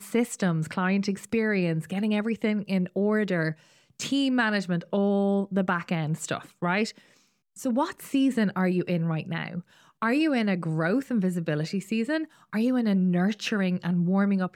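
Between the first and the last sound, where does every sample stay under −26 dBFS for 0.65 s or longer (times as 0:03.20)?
0:06.88–0:07.65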